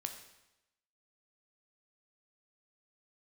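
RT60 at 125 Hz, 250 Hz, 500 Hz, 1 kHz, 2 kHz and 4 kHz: 0.90, 0.90, 0.95, 0.95, 0.90, 0.90 s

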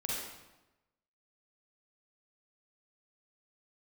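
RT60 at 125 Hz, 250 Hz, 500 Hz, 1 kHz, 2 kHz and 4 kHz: 1.2, 1.1, 1.0, 1.0, 0.90, 0.80 s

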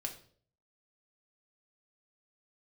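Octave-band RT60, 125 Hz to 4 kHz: 0.75, 0.60, 0.60, 0.45, 0.40, 0.45 s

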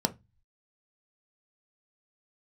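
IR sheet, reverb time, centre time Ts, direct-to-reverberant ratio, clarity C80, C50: 0.20 s, 4 ms, 6.5 dB, 31.0 dB, 20.0 dB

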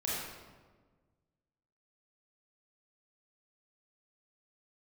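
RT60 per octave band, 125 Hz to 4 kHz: 2.0, 1.8, 1.6, 1.3, 1.1, 0.90 s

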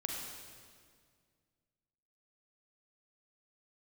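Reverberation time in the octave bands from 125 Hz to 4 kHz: 2.6, 2.4, 2.1, 1.8, 1.7, 1.7 s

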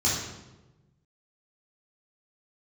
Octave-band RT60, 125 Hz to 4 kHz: 1.7, 1.4, 1.2, 0.95, 0.85, 0.75 s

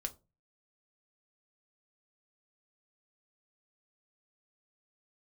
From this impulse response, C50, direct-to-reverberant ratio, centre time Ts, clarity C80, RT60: 19.5 dB, 5.5 dB, 5 ms, 27.0 dB, 0.30 s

